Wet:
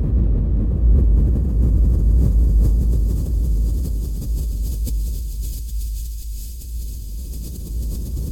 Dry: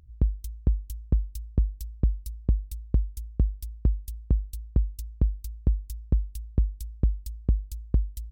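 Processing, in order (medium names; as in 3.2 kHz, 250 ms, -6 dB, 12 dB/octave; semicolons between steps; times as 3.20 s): Paulstretch 26×, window 0.50 s, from 7.48 s; decay stretcher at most 21 dB/s; trim +7 dB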